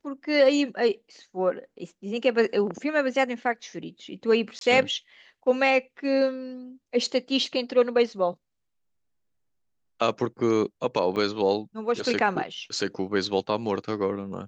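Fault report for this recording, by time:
0:04.59–0:04.61: drop-out 22 ms
0:11.16–0:11.17: drop-out 5.2 ms

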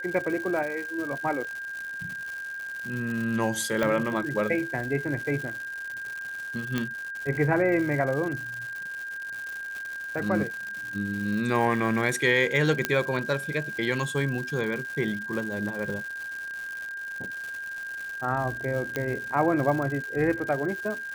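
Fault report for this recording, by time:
surface crackle 240 per second −33 dBFS
whistle 1,600 Hz −33 dBFS
0:03.83: click −13 dBFS
0:06.78: click −13 dBFS
0:12.85: click −8 dBFS
0:18.96: click −14 dBFS

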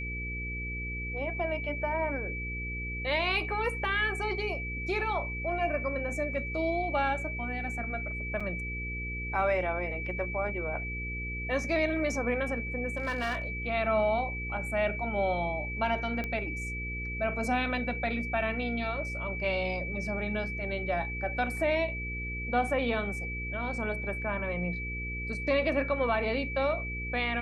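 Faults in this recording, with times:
mains hum 60 Hz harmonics 8 −38 dBFS
whistle 2,300 Hz −36 dBFS
0:08.40: drop-out 5 ms
0:12.96–0:13.47: clipping −27 dBFS
0:16.24: click −21 dBFS

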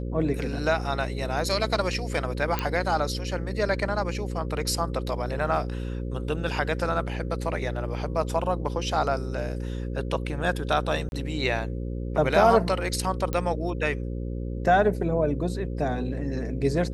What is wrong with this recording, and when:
mains buzz 60 Hz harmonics 9 −31 dBFS
0:02.59: click −11 dBFS
0:11.09–0:11.12: drop-out 31 ms
0:13.33: click −14 dBFS

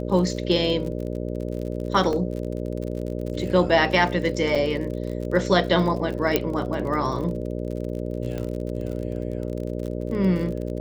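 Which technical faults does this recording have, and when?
mains buzz 60 Hz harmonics 10 −29 dBFS
surface crackle 46 per second −31 dBFS
0:02.13: drop-out 2.1 ms
0:04.55–0:04.56: drop-out 5.3 ms
0:06.36: click −5 dBFS
0:08.38: click −19 dBFS

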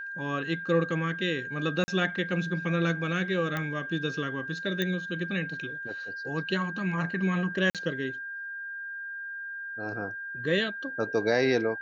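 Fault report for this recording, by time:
whistle 1,600 Hz −35 dBFS
0:01.84–0:01.88: drop-out 40 ms
0:03.57: click −17 dBFS
0:04.82: click −15 dBFS
0:07.70–0:07.75: drop-out 47 ms

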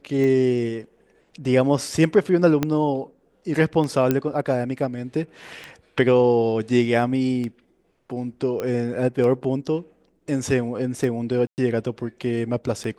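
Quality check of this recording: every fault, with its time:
scratch tick 33 1/3 rpm −18 dBFS
0:02.63: click −8 dBFS
0:04.11: click −7 dBFS
0:08.60: click −15 dBFS
0:11.47–0:11.58: drop-out 109 ms

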